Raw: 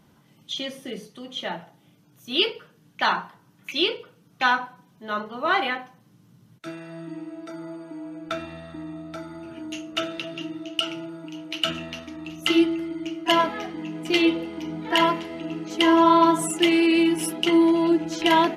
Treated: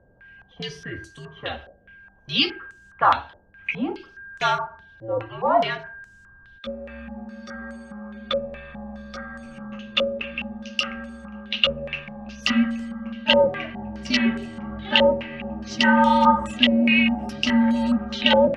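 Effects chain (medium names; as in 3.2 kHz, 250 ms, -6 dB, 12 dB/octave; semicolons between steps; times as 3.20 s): frequency shift -100 Hz; whistle 1.6 kHz -48 dBFS; step-sequenced low-pass 4.8 Hz 550–7600 Hz; trim -1.5 dB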